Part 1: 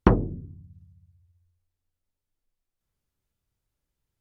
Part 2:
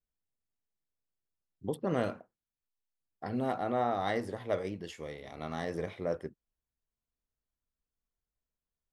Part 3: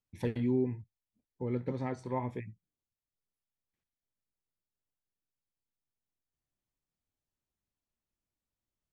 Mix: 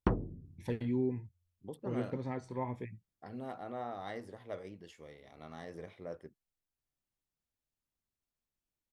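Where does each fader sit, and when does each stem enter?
-12.0 dB, -10.5 dB, -3.0 dB; 0.00 s, 0.00 s, 0.45 s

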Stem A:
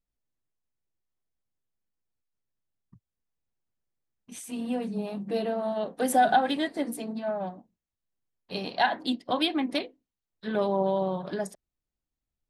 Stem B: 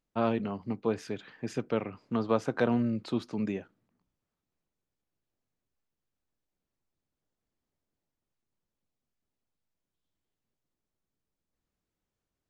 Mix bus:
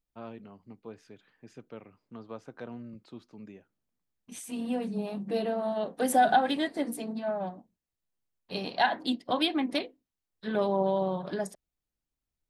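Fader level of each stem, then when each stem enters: -1.0 dB, -15.0 dB; 0.00 s, 0.00 s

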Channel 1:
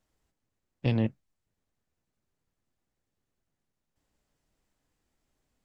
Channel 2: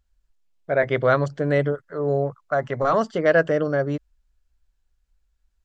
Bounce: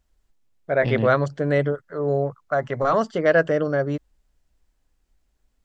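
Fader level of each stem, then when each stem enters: +0.5 dB, 0.0 dB; 0.00 s, 0.00 s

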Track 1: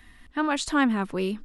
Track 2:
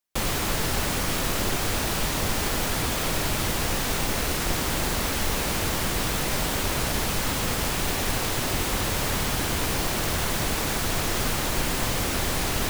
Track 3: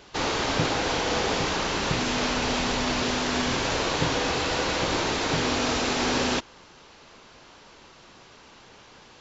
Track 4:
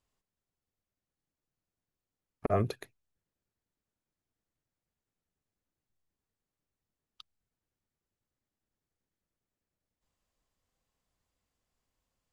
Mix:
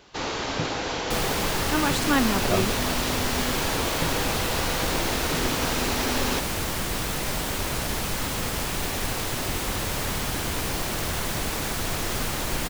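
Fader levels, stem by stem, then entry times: -0.5 dB, -2.0 dB, -3.0 dB, +1.5 dB; 1.35 s, 0.95 s, 0.00 s, 0.00 s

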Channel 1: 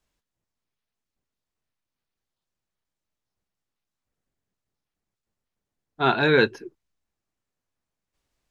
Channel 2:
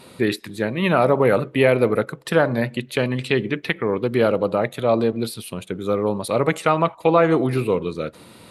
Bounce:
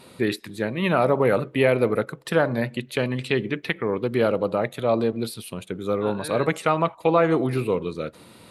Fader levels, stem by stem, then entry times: -16.5 dB, -3.0 dB; 0.00 s, 0.00 s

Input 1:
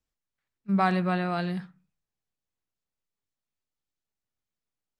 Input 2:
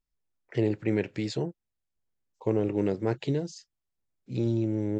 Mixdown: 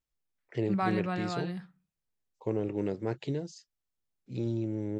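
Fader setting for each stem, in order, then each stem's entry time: -6.5 dB, -5.0 dB; 0.00 s, 0.00 s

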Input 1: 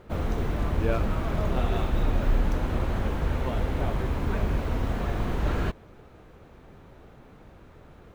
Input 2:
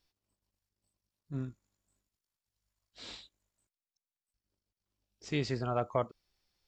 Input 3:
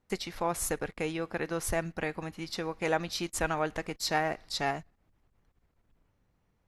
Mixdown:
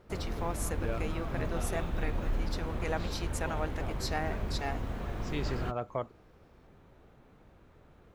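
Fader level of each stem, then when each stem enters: -8.5 dB, -3.5 dB, -6.0 dB; 0.00 s, 0.00 s, 0.00 s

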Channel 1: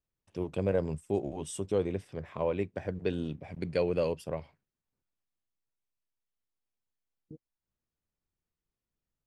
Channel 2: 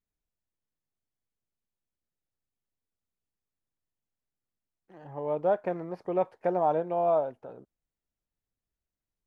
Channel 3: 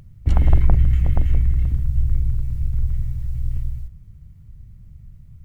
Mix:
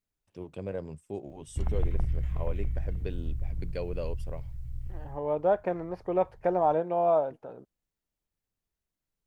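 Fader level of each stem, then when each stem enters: -7.0 dB, +1.0 dB, -14.0 dB; 0.00 s, 0.00 s, 1.30 s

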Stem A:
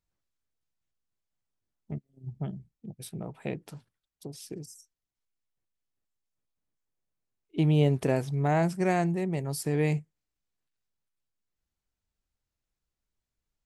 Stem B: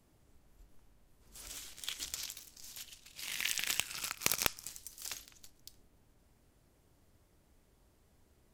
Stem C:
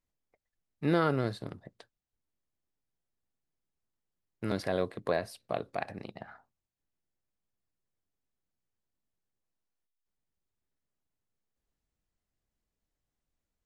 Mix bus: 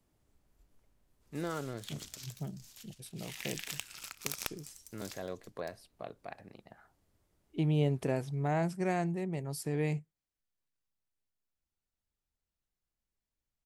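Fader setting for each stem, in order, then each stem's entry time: -6.0 dB, -6.5 dB, -10.5 dB; 0.00 s, 0.00 s, 0.50 s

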